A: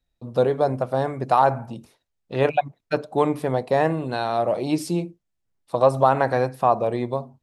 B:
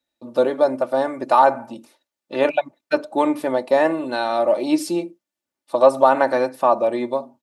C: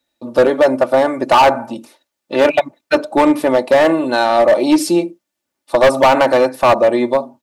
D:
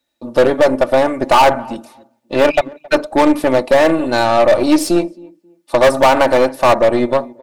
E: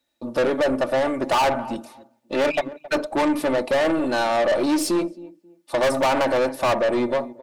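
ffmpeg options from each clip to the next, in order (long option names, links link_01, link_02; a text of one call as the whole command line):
ffmpeg -i in.wav -af "highpass=250,aecho=1:1:3.4:0.64,volume=2dB" out.wav
ffmpeg -i in.wav -af "asoftclip=type=hard:threshold=-14.5dB,volume=8.5dB" out.wav
ffmpeg -i in.wav -filter_complex "[0:a]asplit=2[link_01][link_02];[link_02]adelay=269,lowpass=frequency=1300:poles=1,volume=-22.5dB,asplit=2[link_03][link_04];[link_04]adelay=269,lowpass=frequency=1300:poles=1,volume=0.26[link_05];[link_01][link_03][link_05]amix=inputs=3:normalize=0,aeval=exprs='0.562*(cos(1*acos(clip(val(0)/0.562,-1,1)))-cos(1*PI/2))+0.0708*(cos(4*acos(clip(val(0)/0.562,-1,1)))-cos(4*PI/2))':channel_layout=same" out.wav
ffmpeg -i in.wav -af "asoftclip=type=tanh:threshold=-14dB,volume=-2.5dB" out.wav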